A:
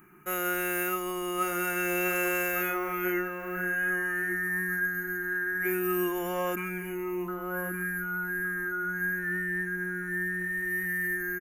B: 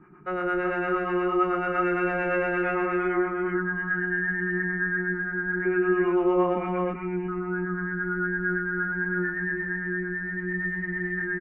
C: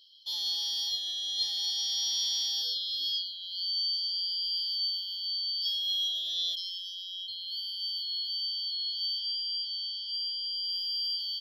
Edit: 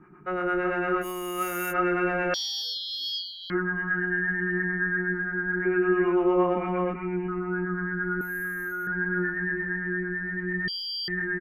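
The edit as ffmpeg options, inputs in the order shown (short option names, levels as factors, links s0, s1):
-filter_complex "[0:a]asplit=2[s0][s1];[2:a]asplit=2[s2][s3];[1:a]asplit=5[s4][s5][s6][s7][s8];[s4]atrim=end=1.05[s9];[s0]atrim=start=1.01:end=1.74[s10];[s5]atrim=start=1.7:end=2.342[s11];[s2]atrim=start=2.338:end=3.502[s12];[s6]atrim=start=3.498:end=8.212[s13];[s1]atrim=start=8.208:end=8.872[s14];[s7]atrim=start=8.868:end=10.682[s15];[s3]atrim=start=10.678:end=11.082[s16];[s8]atrim=start=11.078[s17];[s9][s10]acrossfade=d=0.04:c1=tri:c2=tri[s18];[s18][s11]acrossfade=d=0.04:c1=tri:c2=tri[s19];[s19][s12]acrossfade=d=0.004:c1=hsin:c2=hsin[s20];[s20][s13]acrossfade=d=0.004:c1=hsin:c2=hsin[s21];[s21][s14]acrossfade=d=0.004:c1=hsin:c2=hsin[s22];[s22][s15]acrossfade=d=0.004:c1=hsin:c2=hsin[s23];[s23][s16]acrossfade=d=0.004:c1=hsin:c2=hsin[s24];[s24][s17]acrossfade=d=0.004:c1=hsin:c2=hsin"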